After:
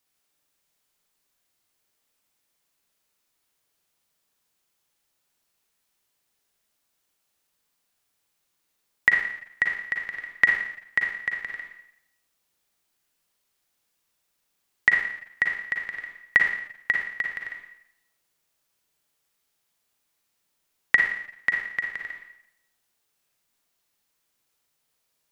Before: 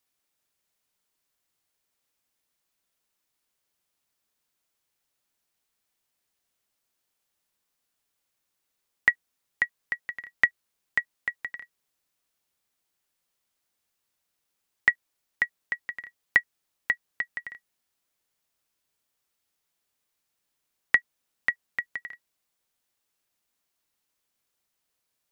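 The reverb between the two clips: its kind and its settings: Schroeder reverb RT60 0.75 s, DRR 1 dB; gain +2 dB

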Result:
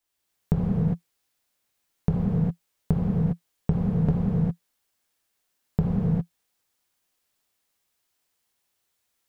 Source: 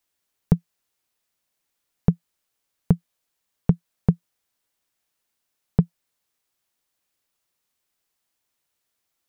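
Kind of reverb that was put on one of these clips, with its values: non-linear reverb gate 0.43 s flat, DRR -6.5 dB; gain -5 dB

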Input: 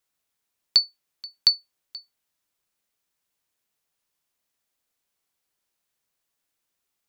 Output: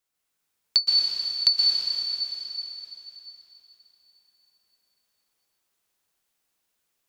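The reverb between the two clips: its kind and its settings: plate-style reverb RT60 3.8 s, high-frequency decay 0.95×, pre-delay 0.11 s, DRR -5 dB; gain -2.5 dB

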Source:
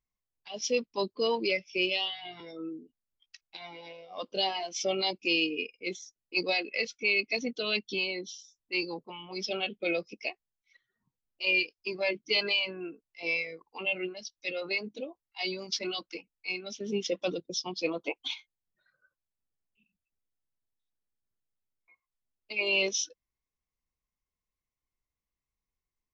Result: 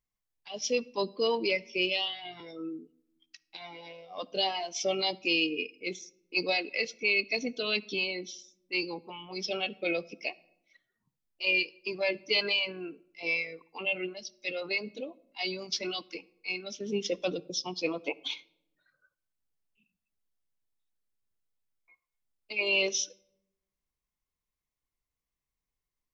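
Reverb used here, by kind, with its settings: shoebox room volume 2500 m³, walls furnished, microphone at 0.34 m

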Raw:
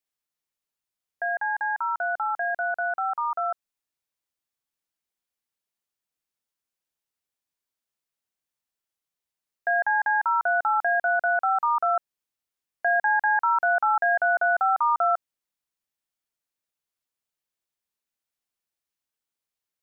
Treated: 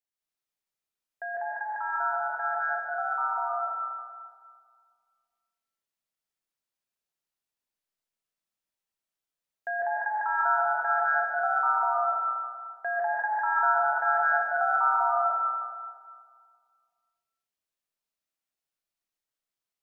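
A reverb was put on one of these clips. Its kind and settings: digital reverb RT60 1.9 s, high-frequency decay 0.85×, pre-delay 0.1 s, DRR -6 dB; gain -8.5 dB

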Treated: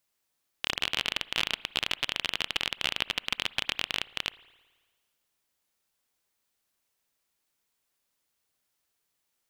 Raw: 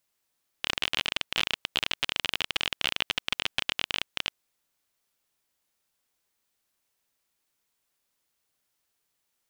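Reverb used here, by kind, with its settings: spring tank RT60 1.4 s, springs 55 ms, chirp 30 ms, DRR 19.5 dB; gain -1 dB

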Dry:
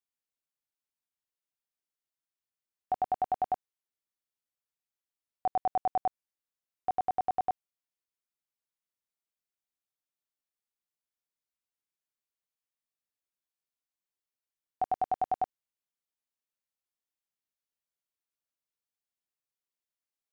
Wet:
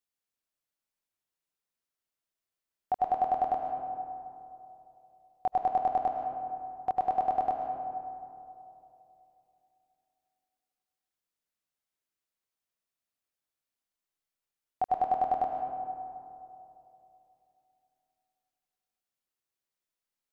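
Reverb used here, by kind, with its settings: digital reverb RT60 3 s, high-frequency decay 0.35×, pre-delay 70 ms, DRR 2 dB; gain +1 dB

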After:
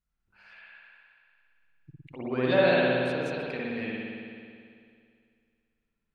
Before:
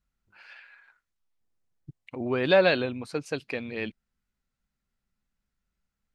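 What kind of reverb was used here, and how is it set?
spring tank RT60 2.3 s, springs 55 ms, chirp 50 ms, DRR -6 dB; gain -7 dB

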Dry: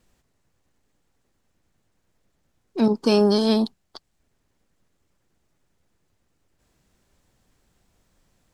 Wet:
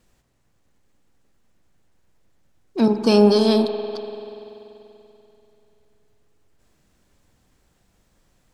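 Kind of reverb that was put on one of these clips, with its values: spring tank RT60 3.2 s, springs 48 ms, chirp 40 ms, DRR 7 dB; gain +2 dB

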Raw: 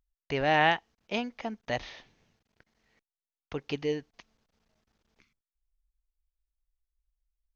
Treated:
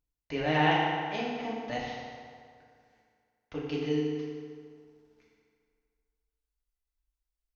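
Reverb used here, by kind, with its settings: FDN reverb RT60 2.1 s, low-frequency decay 0.85×, high-frequency decay 0.7×, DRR -6 dB; gain -7.5 dB

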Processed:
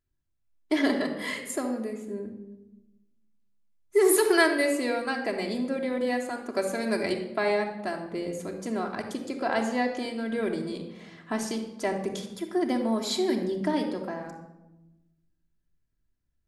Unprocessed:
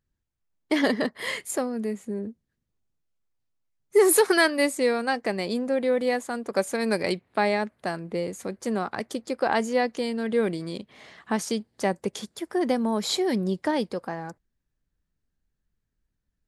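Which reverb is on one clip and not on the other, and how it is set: shoebox room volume 4000 m³, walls furnished, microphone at 3 m; gain -5 dB

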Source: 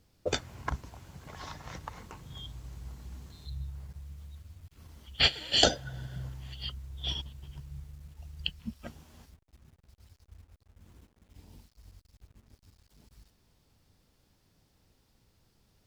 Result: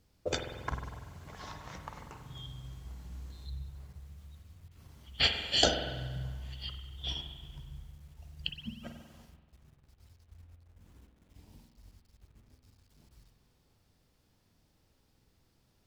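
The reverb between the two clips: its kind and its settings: spring tank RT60 1.3 s, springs 47 ms, chirp 50 ms, DRR 5 dB; gain -3 dB

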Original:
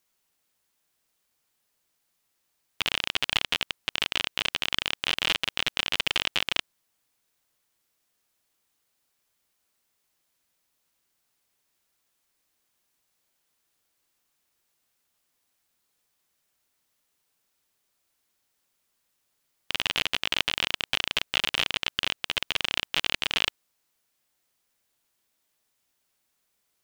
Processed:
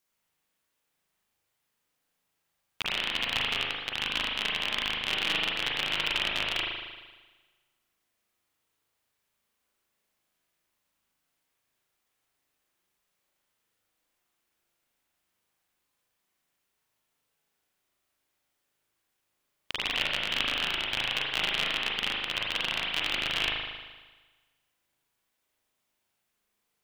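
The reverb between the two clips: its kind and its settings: spring tank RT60 1.3 s, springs 38 ms, chirp 70 ms, DRR -3.5 dB; gain -5.5 dB

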